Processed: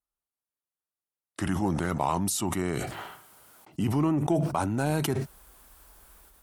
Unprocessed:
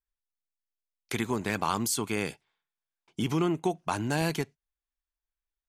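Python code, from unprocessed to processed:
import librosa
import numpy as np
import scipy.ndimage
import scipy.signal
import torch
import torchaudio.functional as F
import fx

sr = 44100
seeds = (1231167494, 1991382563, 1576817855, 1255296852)

p1 = fx.speed_glide(x, sr, from_pct=78, to_pct=99)
p2 = scipy.signal.sosfilt(scipy.signal.butter(2, 46.0, 'highpass', fs=sr, output='sos'), p1)
p3 = fx.band_shelf(p2, sr, hz=3500.0, db=-8.5, octaves=2.3)
p4 = 10.0 ** (-24.0 / 20.0) * np.tanh(p3 / 10.0 ** (-24.0 / 20.0))
p5 = p3 + (p4 * librosa.db_to_amplitude(-11.5))
y = fx.sustainer(p5, sr, db_per_s=26.0)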